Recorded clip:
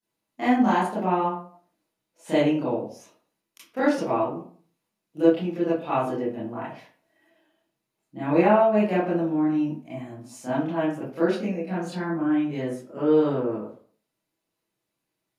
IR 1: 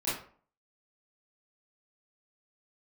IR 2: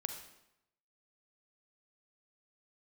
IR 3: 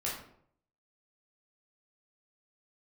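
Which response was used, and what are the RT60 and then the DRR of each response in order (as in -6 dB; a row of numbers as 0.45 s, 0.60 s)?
1; 0.45 s, 0.85 s, 0.65 s; -12.0 dB, 5.5 dB, -6.0 dB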